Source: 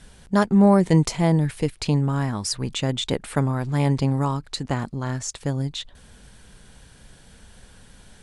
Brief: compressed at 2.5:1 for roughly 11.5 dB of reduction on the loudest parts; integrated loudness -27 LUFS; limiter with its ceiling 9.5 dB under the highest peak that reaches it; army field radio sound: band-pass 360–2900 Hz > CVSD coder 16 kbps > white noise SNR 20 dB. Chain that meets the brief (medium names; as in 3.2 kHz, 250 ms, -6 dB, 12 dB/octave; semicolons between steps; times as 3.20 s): compression 2.5:1, threshold -29 dBFS; peak limiter -23.5 dBFS; band-pass 360–2900 Hz; CVSD coder 16 kbps; white noise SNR 20 dB; trim +15.5 dB